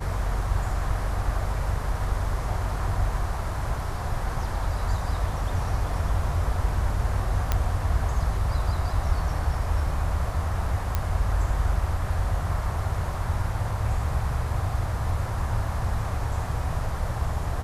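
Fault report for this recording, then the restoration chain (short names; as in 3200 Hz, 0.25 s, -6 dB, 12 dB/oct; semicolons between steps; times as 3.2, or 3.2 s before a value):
7.52 pop -9 dBFS
10.95 pop -11 dBFS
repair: de-click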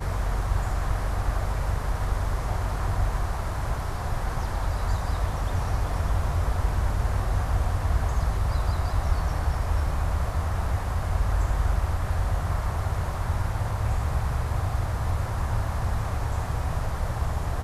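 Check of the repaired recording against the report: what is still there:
none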